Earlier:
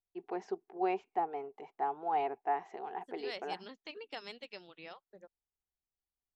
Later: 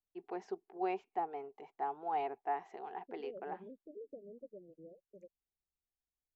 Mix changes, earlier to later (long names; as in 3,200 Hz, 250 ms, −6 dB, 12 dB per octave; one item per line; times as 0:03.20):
first voice −3.5 dB
second voice: add Butterworth low-pass 600 Hz 96 dB per octave